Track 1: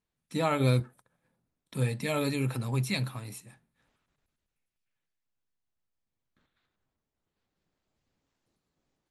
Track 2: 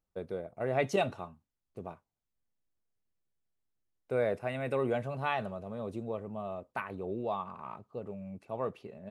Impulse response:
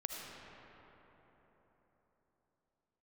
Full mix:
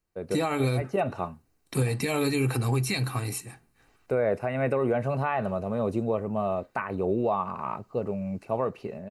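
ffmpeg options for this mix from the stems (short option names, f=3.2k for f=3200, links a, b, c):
-filter_complex "[0:a]aecho=1:1:2.6:0.48,acompressor=threshold=-30dB:ratio=2.5,volume=0dB,asplit=2[a][b];[1:a]acrossover=split=2500[c][d];[d]acompressor=threshold=-60dB:ratio=4:attack=1:release=60[e];[c][e]amix=inputs=2:normalize=0,volume=1dB[f];[b]apad=whole_len=401377[g];[f][g]sidechaincompress=threshold=-41dB:ratio=8:attack=6.5:release=410[h];[a][h]amix=inputs=2:normalize=0,dynaudnorm=f=180:g=3:m=10dB,bandreject=f=3.4k:w=5.8,alimiter=limit=-16.5dB:level=0:latency=1:release=204"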